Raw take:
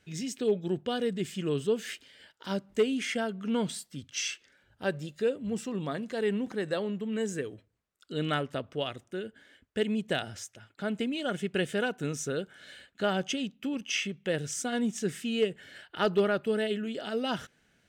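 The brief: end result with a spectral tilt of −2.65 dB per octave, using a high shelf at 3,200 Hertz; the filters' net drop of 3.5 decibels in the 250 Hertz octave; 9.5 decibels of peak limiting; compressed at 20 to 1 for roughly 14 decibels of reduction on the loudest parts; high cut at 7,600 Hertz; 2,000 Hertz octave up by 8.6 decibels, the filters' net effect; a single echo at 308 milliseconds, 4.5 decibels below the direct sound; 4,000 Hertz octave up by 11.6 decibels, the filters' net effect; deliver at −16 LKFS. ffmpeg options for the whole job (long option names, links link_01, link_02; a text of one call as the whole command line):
ffmpeg -i in.wav -af "lowpass=7600,equalizer=frequency=250:width_type=o:gain=-4.5,equalizer=frequency=2000:width_type=o:gain=6.5,highshelf=frequency=3200:gain=8.5,equalizer=frequency=4000:width_type=o:gain=7.5,acompressor=threshold=-31dB:ratio=20,alimiter=level_in=3dB:limit=-24dB:level=0:latency=1,volume=-3dB,aecho=1:1:308:0.596,volume=20.5dB" out.wav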